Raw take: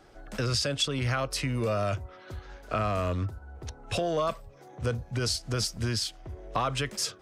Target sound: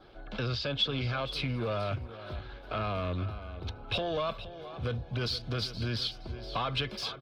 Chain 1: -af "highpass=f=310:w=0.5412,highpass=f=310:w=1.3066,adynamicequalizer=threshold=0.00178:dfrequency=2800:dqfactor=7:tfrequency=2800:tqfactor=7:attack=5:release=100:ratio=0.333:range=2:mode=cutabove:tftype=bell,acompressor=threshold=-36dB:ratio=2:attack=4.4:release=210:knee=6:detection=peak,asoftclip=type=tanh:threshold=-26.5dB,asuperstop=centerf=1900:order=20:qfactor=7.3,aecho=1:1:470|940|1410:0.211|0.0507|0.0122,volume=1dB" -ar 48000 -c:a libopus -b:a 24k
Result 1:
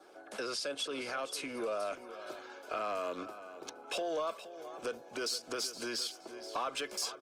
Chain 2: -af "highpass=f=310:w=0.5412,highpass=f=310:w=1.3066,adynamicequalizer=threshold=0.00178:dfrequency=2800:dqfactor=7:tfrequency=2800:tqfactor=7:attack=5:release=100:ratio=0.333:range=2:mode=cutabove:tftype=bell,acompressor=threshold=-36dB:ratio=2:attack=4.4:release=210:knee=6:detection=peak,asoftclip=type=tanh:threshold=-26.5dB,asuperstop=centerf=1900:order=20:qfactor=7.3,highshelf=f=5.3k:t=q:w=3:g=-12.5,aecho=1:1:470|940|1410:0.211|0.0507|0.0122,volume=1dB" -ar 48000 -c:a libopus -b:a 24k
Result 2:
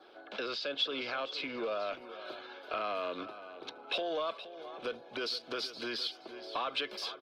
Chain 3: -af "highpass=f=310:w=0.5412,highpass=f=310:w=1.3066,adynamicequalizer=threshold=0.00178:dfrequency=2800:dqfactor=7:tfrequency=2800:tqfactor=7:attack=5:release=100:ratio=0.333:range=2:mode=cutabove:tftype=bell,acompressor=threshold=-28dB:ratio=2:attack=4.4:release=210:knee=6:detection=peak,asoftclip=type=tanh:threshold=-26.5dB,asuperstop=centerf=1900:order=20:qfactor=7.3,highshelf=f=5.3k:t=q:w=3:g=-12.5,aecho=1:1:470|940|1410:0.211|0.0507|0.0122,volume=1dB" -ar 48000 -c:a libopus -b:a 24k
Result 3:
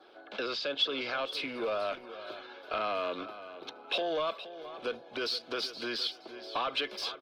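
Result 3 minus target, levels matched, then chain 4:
250 Hz band -3.5 dB
-af "adynamicequalizer=threshold=0.00178:dfrequency=2800:dqfactor=7:tfrequency=2800:tqfactor=7:attack=5:release=100:ratio=0.333:range=2:mode=cutabove:tftype=bell,acompressor=threshold=-28dB:ratio=2:attack=4.4:release=210:knee=6:detection=peak,asoftclip=type=tanh:threshold=-26.5dB,asuperstop=centerf=1900:order=20:qfactor=7.3,highshelf=f=5.3k:t=q:w=3:g=-12.5,aecho=1:1:470|940|1410:0.211|0.0507|0.0122,volume=1dB" -ar 48000 -c:a libopus -b:a 24k

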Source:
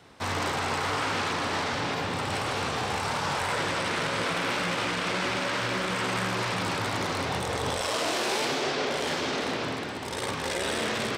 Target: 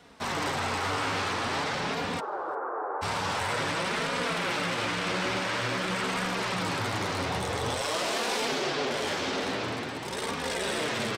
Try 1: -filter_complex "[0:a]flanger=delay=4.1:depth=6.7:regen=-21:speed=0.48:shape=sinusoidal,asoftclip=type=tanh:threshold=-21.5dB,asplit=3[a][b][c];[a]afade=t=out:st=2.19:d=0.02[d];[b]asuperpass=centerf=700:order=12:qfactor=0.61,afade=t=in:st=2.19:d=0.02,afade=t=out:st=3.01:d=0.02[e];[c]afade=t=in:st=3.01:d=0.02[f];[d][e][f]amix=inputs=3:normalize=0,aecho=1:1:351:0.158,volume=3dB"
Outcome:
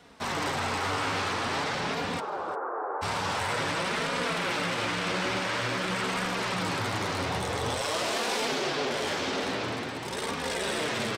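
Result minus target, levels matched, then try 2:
echo-to-direct +10.5 dB
-filter_complex "[0:a]flanger=delay=4.1:depth=6.7:regen=-21:speed=0.48:shape=sinusoidal,asoftclip=type=tanh:threshold=-21.5dB,asplit=3[a][b][c];[a]afade=t=out:st=2.19:d=0.02[d];[b]asuperpass=centerf=700:order=12:qfactor=0.61,afade=t=in:st=2.19:d=0.02,afade=t=out:st=3.01:d=0.02[e];[c]afade=t=in:st=3.01:d=0.02[f];[d][e][f]amix=inputs=3:normalize=0,aecho=1:1:351:0.0473,volume=3dB"

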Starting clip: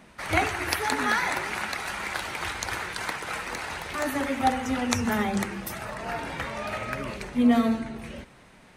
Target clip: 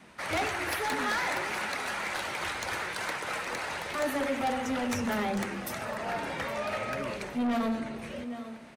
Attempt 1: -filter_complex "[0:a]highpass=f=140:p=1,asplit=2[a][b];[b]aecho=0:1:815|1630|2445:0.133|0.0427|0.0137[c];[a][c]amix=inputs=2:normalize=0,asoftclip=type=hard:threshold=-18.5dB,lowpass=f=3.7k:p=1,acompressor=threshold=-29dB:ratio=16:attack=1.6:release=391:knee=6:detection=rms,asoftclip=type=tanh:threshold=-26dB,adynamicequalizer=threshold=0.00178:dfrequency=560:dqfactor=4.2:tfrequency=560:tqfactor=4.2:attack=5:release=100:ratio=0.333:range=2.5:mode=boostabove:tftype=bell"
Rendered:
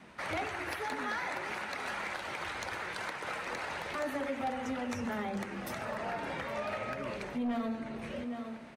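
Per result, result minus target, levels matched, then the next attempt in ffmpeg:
compressor: peak gain reduction +10 dB; hard clip: distortion +11 dB; 8000 Hz band -4.5 dB
-filter_complex "[0:a]highpass=f=140:p=1,asplit=2[a][b];[b]aecho=0:1:815|1630|2445:0.133|0.0427|0.0137[c];[a][c]amix=inputs=2:normalize=0,asoftclip=type=hard:threshold=-18.5dB,lowpass=f=3.7k:p=1,asoftclip=type=tanh:threshold=-26dB,adynamicequalizer=threshold=0.00178:dfrequency=560:dqfactor=4.2:tfrequency=560:tqfactor=4.2:attack=5:release=100:ratio=0.333:range=2.5:mode=boostabove:tftype=bell"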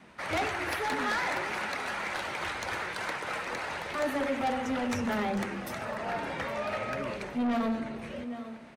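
hard clip: distortion +11 dB; 8000 Hz band -4.5 dB
-filter_complex "[0:a]highpass=f=140:p=1,asplit=2[a][b];[b]aecho=0:1:815|1630|2445:0.133|0.0427|0.0137[c];[a][c]amix=inputs=2:normalize=0,asoftclip=type=hard:threshold=-12.5dB,lowpass=f=3.7k:p=1,asoftclip=type=tanh:threshold=-26dB,adynamicequalizer=threshold=0.00178:dfrequency=560:dqfactor=4.2:tfrequency=560:tqfactor=4.2:attack=5:release=100:ratio=0.333:range=2.5:mode=boostabove:tftype=bell"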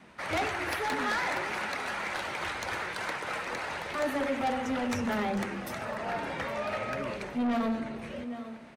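8000 Hz band -4.0 dB
-filter_complex "[0:a]highpass=f=140:p=1,asplit=2[a][b];[b]aecho=0:1:815|1630|2445:0.133|0.0427|0.0137[c];[a][c]amix=inputs=2:normalize=0,asoftclip=type=hard:threshold=-12.5dB,lowpass=f=12k:p=1,asoftclip=type=tanh:threshold=-26dB,adynamicequalizer=threshold=0.00178:dfrequency=560:dqfactor=4.2:tfrequency=560:tqfactor=4.2:attack=5:release=100:ratio=0.333:range=2.5:mode=boostabove:tftype=bell"

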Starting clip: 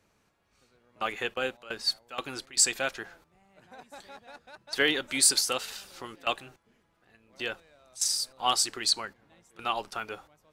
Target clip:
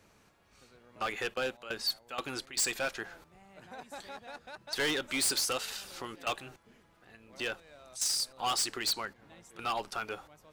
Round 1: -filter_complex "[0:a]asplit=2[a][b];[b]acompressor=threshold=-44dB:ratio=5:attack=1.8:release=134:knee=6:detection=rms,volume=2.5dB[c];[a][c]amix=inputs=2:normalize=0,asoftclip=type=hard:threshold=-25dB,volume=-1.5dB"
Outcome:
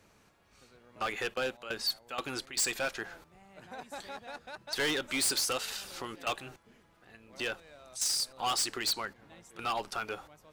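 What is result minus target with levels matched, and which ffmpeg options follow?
compressor: peak gain reduction -5 dB
-filter_complex "[0:a]asplit=2[a][b];[b]acompressor=threshold=-50.5dB:ratio=5:attack=1.8:release=134:knee=6:detection=rms,volume=2.5dB[c];[a][c]amix=inputs=2:normalize=0,asoftclip=type=hard:threshold=-25dB,volume=-1.5dB"

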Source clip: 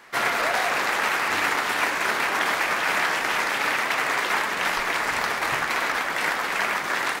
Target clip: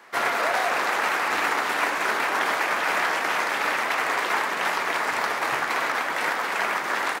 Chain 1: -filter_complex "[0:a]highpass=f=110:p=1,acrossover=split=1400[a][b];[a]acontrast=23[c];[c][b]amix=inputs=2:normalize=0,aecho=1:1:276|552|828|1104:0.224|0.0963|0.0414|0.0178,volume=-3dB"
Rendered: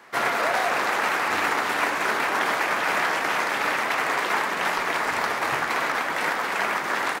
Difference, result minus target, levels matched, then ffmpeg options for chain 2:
125 Hz band +5.0 dB
-filter_complex "[0:a]highpass=f=110:p=1,lowshelf=f=170:g=-9.5,acrossover=split=1400[a][b];[a]acontrast=23[c];[c][b]amix=inputs=2:normalize=0,aecho=1:1:276|552|828|1104:0.224|0.0963|0.0414|0.0178,volume=-3dB"

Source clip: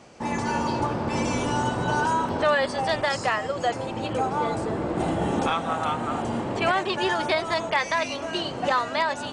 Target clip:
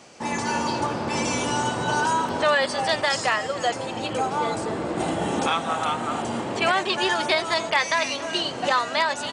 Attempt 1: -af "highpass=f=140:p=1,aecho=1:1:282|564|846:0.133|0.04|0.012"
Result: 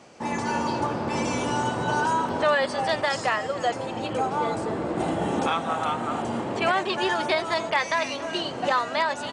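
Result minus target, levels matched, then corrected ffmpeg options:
4000 Hz band -3.5 dB
-af "highpass=f=140:p=1,highshelf=f=2.3k:g=7.5,aecho=1:1:282|564|846:0.133|0.04|0.012"

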